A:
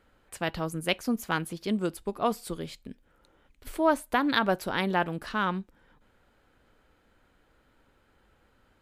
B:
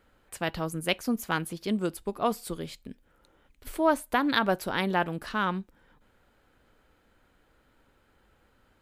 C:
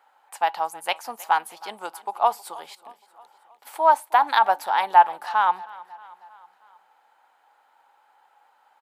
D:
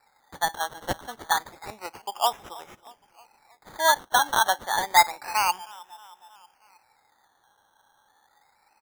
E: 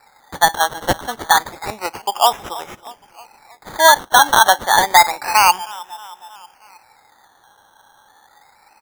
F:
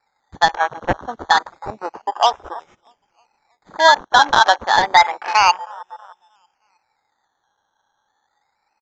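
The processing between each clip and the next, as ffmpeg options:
ffmpeg -i in.wav -af "highshelf=frequency=12000:gain=5" out.wav
ffmpeg -i in.wav -af "highpass=frequency=840:width_type=q:width=9,aecho=1:1:316|632|948|1264:0.0891|0.0508|0.029|0.0165" out.wav
ffmpeg -i in.wav -af "acrusher=samples=14:mix=1:aa=0.000001:lfo=1:lforange=8.4:lforate=0.29,volume=-3.5dB" out.wav
ffmpeg -i in.wav -af "alimiter=level_in=13.5dB:limit=-1dB:release=50:level=0:latency=1,volume=-1dB" out.wav
ffmpeg -i in.wav -af "aresample=16000,aresample=44100,afwtdn=0.0562,volume=-1dB" out.wav

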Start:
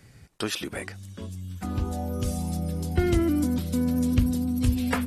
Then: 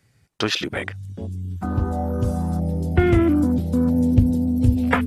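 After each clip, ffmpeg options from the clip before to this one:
ffmpeg -i in.wav -af "lowshelf=frequency=280:gain=-8.5,afwtdn=0.0112,equalizer=frequency=110:width=1.1:gain=7,volume=9dB" out.wav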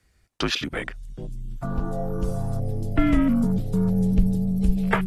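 ffmpeg -i in.wav -af "afreqshift=-61,volume=-2.5dB" out.wav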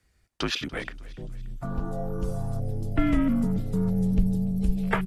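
ffmpeg -i in.wav -af "aecho=1:1:289|578|867:0.0891|0.0419|0.0197,volume=-3.5dB" out.wav

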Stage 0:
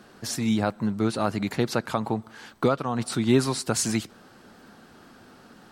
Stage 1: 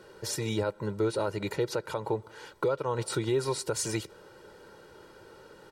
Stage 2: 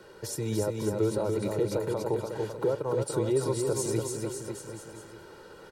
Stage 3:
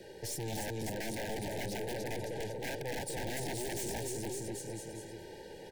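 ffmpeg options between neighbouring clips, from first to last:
ffmpeg -i in.wav -af "equalizer=frequency=460:width=0.96:gain=6,aecho=1:1:2.1:0.83,alimiter=limit=-14dB:level=0:latency=1:release=207,volume=-5dB" out.wav
ffmpeg -i in.wav -filter_complex "[0:a]acrossover=split=300|840|6700[link_01][link_02][link_03][link_04];[link_03]acompressor=threshold=-49dB:ratio=5[link_05];[link_01][link_02][link_05][link_04]amix=inputs=4:normalize=0,aecho=1:1:290|551|785.9|997.3|1188:0.631|0.398|0.251|0.158|0.1,volume=1dB" out.wav
ffmpeg -i in.wav -af "aeval=exprs='(mod(15*val(0)+1,2)-1)/15':channel_layout=same,aeval=exprs='(tanh(89.1*val(0)+0.45)-tanh(0.45))/89.1':channel_layout=same,asuperstop=centerf=1200:order=20:qfactor=1.9,volume=3dB" out.wav

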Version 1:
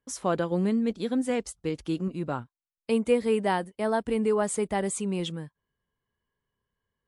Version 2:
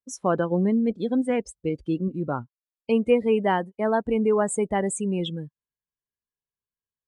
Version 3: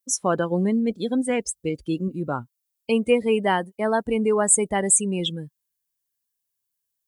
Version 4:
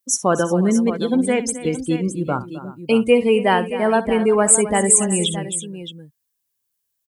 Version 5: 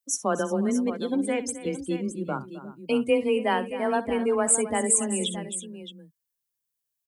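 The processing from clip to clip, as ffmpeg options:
ffmpeg -i in.wav -af "afftdn=noise_reduction=22:noise_floor=-36,volume=3.5dB" out.wav
ffmpeg -i in.wav -af "crystalizer=i=4:c=0" out.wav
ffmpeg -i in.wav -af "aecho=1:1:62|262|358|620:0.168|0.168|0.119|0.251,volume=4.5dB" out.wav
ffmpeg -i in.wav -af "afreqshift=18,volume=-8dB" out.wav

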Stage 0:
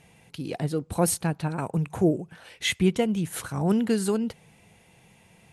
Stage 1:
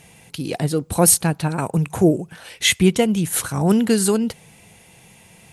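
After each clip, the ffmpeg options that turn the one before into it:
ffmpeg -i in.wav -af "highshelf=frequency=4600:gain=8.5,volume=6.5dB" out.wav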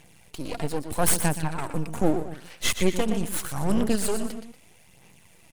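ffmpeg -i in.wav -af "aecho=1:1:121|237:0.316|0.141,aeval=exprs='max(val(0),0)':channel_layout=same,aphaser=in_gain=1:out_gain=1:delay=4.4:decay=0.37:speed=0.79:type=sinusoidal,volume=-5dB" out.wav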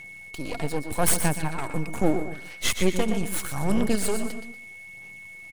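ffmpeg -i in.wav -af "aeval=exprs='val(0)+0.01*sin(2*PI*2200*n/s)':channel_layout=same,aecho=1:1:137:0.158" out.wav

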